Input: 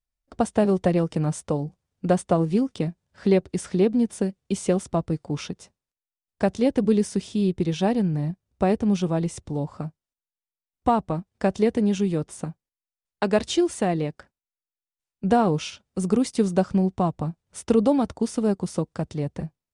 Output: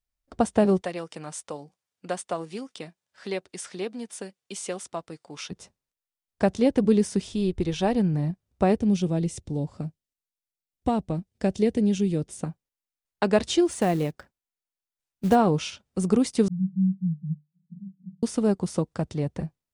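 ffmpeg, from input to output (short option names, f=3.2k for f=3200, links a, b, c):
-filter_complex "[0:a]asplit=3[a][b][c];[a]afade=t=out:st=0.8:d=0.02[d];[b]highpass=f=1.4k:p=1,afade=t=in:st=0.8:d=0.02,afade=t=out:st=5.5:d=0.02[e];[c]afade=t=in:st=5.5:d=0.02[f];[d][e][f]amix=inputs=3:normalize=0,asplit=3[g][h][i];[g]afade=t=out:st=7.24:d=0.02[j];[h]asubboost=boost=7.5:cutoff=56,afade=t=in:st=7.24:d=0.02,afade=t=out:st=7.95:d=0.02[k];[i]afade=t=in:st=7.95:d=0.02[l];[j][k][l]amix=inputs=3:normalize=0,asettb=1/sr,asplit=3[m][n][o];[m]atrim=end=8.794[p];[n]atrim=start=8.79:end=12.43,asetpts=PTS-STARTPTS,afade=t=in:d=0.004:c=qsin,afade=t=out:st=3.636:d=0.004:c=qsin,equalizer=f=1.1k:w=0.97:g=-11[q];[o]atrim=start=12.426[r];[p][q]acrossfade=d=0.004:c1=hsin:c2=qsin[s];[s][r]acrossfade=d=0.004:c1=qsin:c2=hsin,asplit=3[t][u][v];[t]afade=t=out:st=13.67:d=0.02[w];[u]acrusher=bits=6:mode=log:mix=0:aa=0.000001,afade=t=in:st=13.67:d=0.02,afade=t=out:st=15.34:d=0.02[x];[v]afade=t=in:st=15.34:d=0.02[y];[w][x][y]amix=inputs=3:normalize=0,asettb=1/sr,asplit=3[z][aa][ab];[z]atrim=end=16.484[ac];[aa]atrim=start=16.48:end=18.23,asetpts=PTS-STARTPTS,afade=t=in:d=0.004:c=qsin,afade=t=out:st=1.746:d=0.004:c=qsin,asuperpass=centerf=170:order=12:qfactor=3.7[ad];[ab]atrim=start=18.226[ae];[ac][ad]acrossfade=d=0.004:c1=hsin:c2=qsin[af];[af][ae]acrossfade=d=0.004:c1=qsin:c2=hsin"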